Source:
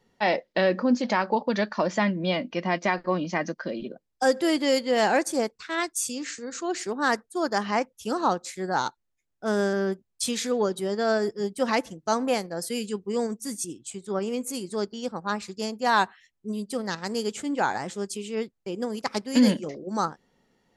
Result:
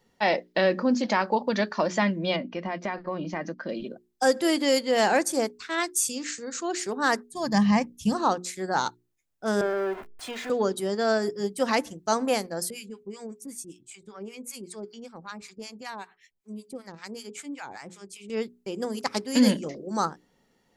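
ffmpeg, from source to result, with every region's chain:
ffmpeg -i in.wav -filter_complex "[0:a]asettb=1/sr,asplit=3[link_01][link_02][link_03];[link_01]atrim=end=2.364[link_04];[link_02]atrim=start=2.36:end=3.69,asetpts=PTS-STARTPTS,afade=type=in:duration=0.004:curve=qsin,afade=type=out:start_time=1.326:duration=0.004:curve=qsin,lowpass=frequency=2100:poles=1,acompressor=threshold=-27dB:ratio=2.5:attack=3.2:release=140:knee=1:detection=peak[link_05];[link_03]atrim=start=3.686[link_06];[link_04][link_05]acrossfade=duration=0.004:curve1=hsin:curve2=qsin[link_07];[link_07][link_06]acrossfade=duration=0.004:curve1=qsin:curve2=hsin,asettb=1/sr,asplit=3[link_08][link_09][link_10];[link_08]atrim=end=7.304[link_11];[link_09]atrim=start=7.3:end=8.15,asetpts=PTS-STARTPTS,afade=type=in:duration=0.004:curve=qsin,afade=type=out:start_time=0.846:duration=0.004:curve=qsin,acrossover=split=8700[link_12][link_13];[link_13]acompressor=threshold=-57dB:ratio=4:attack=1:release=60[link_14];[link_12][link_14]amix=inputs=2:normalize=0,asuperstop=centerf=1400:order=4:qfactor=3.9,lowshelf=frequency=240:width_type=q:width=3:gain=13[link_15];[link_10]atrim=start=8.146[link_16];[link_11][link_15]acrossfade=duration=0.004:curve1=hsin:curve2=qsin[link_17];[link_17][link_16]acrossfade=duration=0.004:curve1=qsin:curve2=hsin,asettb=1/sr,asplit=3[link_18][link_19][link_20];[link_18]atrim=end=9.614[link_21];[link_19]atrim=start=9.61:end=10.5,asetpts=PTS-STARTPTS,afade=type=in:duration=0.004:curve=qsin,afade=type=out:start_time=0.886:duration=0.004:curve=qsin,aeval=exprs='val(0)+0.5*0.0355*sgn(val(0))':channel_layout=same,acrossover=split=430 2500:gain=0.224 1 0.0708[link_22][link_23][link_24];[link_22][link_23][link_24]amix=inputs=3:normalize=0,aecho=1:1:2.9:0.43,atrim=end_sample=39249[link_25];[link_20]atrim=start=10.496[link_26];[link_21][link_25]acrossfade=duration=0.004:curve1=hsin:curve2=qsin[link_27];[link_27][link_26]acrossfade=duration=0.004:curve1=qsin:curve2=hsin,asettb=1/sr,asplit=3[link_28][link_29][link_30];[link_28]atrim=end=12.704[link_31];[link_29]atrim=start=12.7:end=18.3,asetpts=PTS-STARTPTS,afade=type=in:duration=0.004:curve=qsin,afade=type=out:start_time=5.596:duration=0.004:curve=qsin,equalizer=frequency=2300:width_type=o:width=0.24:gain=9,acompressor=threshold=-36dB:ratio=2:attack=3.2:release=140:knee=1:detection=peak,acrossover=split=880[link_32][link_33];[link_32]aeval=exprs='val(0)*(1-1/2+1/2*cos(2*PI*5.2*n/s))':channel_layout=same[link_34];[link_33]aeval=exprs='val(0)*(1-1/2-1/2*cos(2*PI*5.2*n/s))':channel_layout=same[link_35];[link_34][link_35]amix=inputs=2:normalize=0[link_36];[link_30]atrim=start=18.296[link_37];[link_31][link_36]acrossfade=duration=0.004:curve1=hsin:curve2=qsin[link_38];[link_38][link_37]acrossfade=duration=0.004:curve1=qsin:curve2=hsin,highshelf=frequency=7700:gain=6.5,bandreject=frequency=60:width_type=h:width=6,bandreject=frequency=120:width_type=h:width=6,bandreject=frequency=180:width_type=h:width=6,bandreject=frequency=240:width_type=h:width=6,bandreject=frequency=300:width_type=h:width=6,bandreject=frequency=360:width_type=h:width=6,bandreject=frequency=420:width_type=h:width=6" out.wav

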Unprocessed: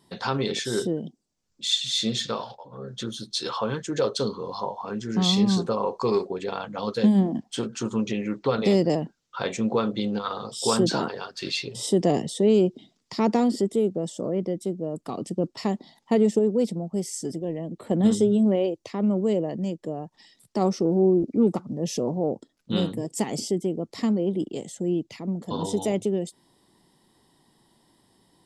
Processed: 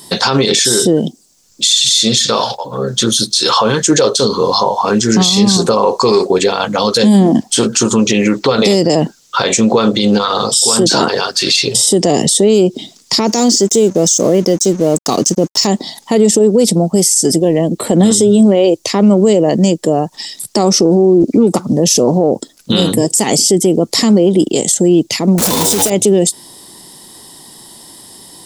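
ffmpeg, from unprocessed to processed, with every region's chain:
ffmpeg -i in.wav -filter_complex "[0:a]asettb=1/sr,asplit=3[link_01][link_02][link_03];[link_01]atrim=end=13.274[link_04];[link_02]atrim=start=13.27:end=15.67,asetpts=PTS-STARTPTS,afade=type=in:duration=0.004:curve=qsin,afade=type=out:start_time=2.396:duration=0.004:curve=qsin,lowpass=frequency=6300:width_type=q:width=8,aeval=exprs='sgn(val(0))*max(abs(val(0))-0.00237,0)':channel_layout=same[link_05];[link_03]atrim=start=15.666[link_06];[link_04][link_05]acrossfade=duration=0.004:curve1=hsin:curve2=qsin[link_07];[link_07][link_06]acrossfade=duration=0.004:curve1=qsin:curve2=hsin,asettb=1/sr,asplit=3[link_08][link_09][link_10];[link_08]atrim=end=25.384[link_11];[link_09]atrim=start=25.38:end=25.9,asetpts=PTS-STARTPTS,afade=type=in:duration=0.004:curve=qsin,afade=type=out:start_time=0.516:duration=0.004:curve=qsin,aeval=exprs='val(0)+0.5*0.0376*sgn(val(0))':channel_layout=same,acrusher=bits=3:mode=log:mix=0:aa=0.000001[link_12];[link_10]atrim=start=25.896[link_13];[link_11][link_12]acrossfade=duration=0.004:curve1=hsin:curve2=qsin[link_14];[link_14][link_13]acrossfade=duration=0.004:curve1=qsin:curve2=hsin,bass=frequency=250:gain=-4,treble=frequency=4000:gain=13,acompressor=threshold=-23dB:ratio=6,alimiter=level_in=22dB:limit=-1dB:release=50:level=0:latency=1,volume=-1dB" out.wav

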